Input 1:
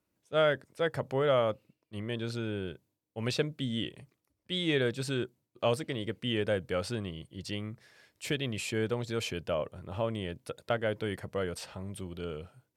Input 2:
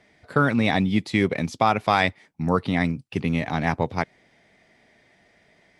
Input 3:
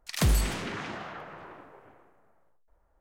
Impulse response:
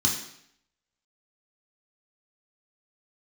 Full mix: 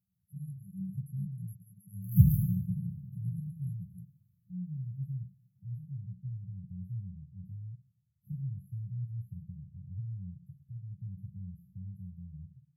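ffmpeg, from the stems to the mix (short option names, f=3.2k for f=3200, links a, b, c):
-filter_complex "[0:a]alimiter=limit=-21dB:level=0:latency=1:release=99,lowpass=f=3.5k:p=1,volume=-10dB,asplit=2[a][b];[b]volume=-8.5dB[c];[1:a]highpass=470,volume=1.5dB[d];[2:a]asoftclip=type=hard:threshold=-23dB,highpass=f=87:w=0.5412,highpass=f=87:w=1.3066,adelay=1950,volume=1dB,asplit=2[e][f];[f]volume=-8.5dB[g];[3:a]atrim=start_sample=2205[h];[c][g]amix=inputs=2:normalize=0[i];[i][h]afir=irnorm=-1:irlink=0[j];[a][d][e][j]amix=inputs=4:normalize=0,afftfilt=real='re*(1-between(b*sr/4096,200,11000))':imag='im*(1-between(b*sr/4096,200,11000))':win_size=4096:overlap=0.75"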